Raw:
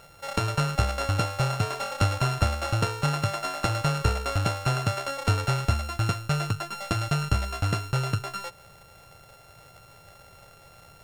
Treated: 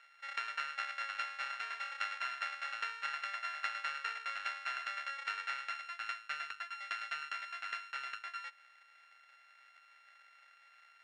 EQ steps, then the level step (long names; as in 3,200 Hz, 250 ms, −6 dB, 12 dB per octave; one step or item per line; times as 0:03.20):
four-pole ladder band-pass 2,100 Hz, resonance 55%
+3.5 dB